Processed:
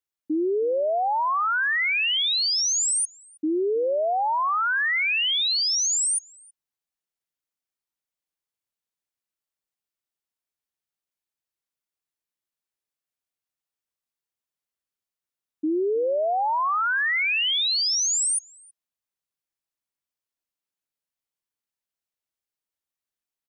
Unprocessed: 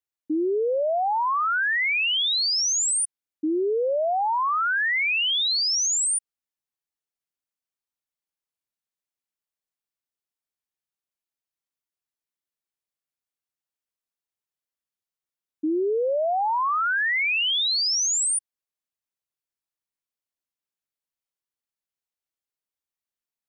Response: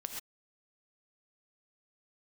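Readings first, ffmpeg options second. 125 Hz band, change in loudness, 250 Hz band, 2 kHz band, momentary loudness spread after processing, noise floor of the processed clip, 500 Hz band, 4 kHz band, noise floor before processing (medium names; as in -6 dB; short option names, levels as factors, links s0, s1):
no reading, 0.0 dB, 0.0 dB, 0.0 dB, 6 LU, under -85 dBFS, 0.0 dB, 0.0 dB, under -85 dBFS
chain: -filter_complex "[0:a]asplit=2[s0][s1];[s1]adelay=320.7,volume=0.0891,highshelf=f=4000:g=-7.22[s2];[s0][s2]amix=inputs=2:normalize=0"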